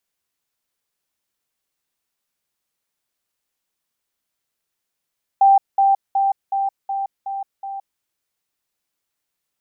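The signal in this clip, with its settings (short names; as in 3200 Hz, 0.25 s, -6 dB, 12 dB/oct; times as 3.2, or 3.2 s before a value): level ladder 786 Hz -8.5 dBFS, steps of -3 dB, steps 7, 0.17 s 0.20 s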